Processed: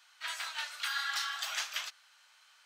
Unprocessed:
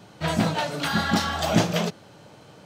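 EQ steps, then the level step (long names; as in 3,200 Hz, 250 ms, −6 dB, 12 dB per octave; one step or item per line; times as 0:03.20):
high-pass filter 1,300 Hz 24 dB per octave
−6.0 dB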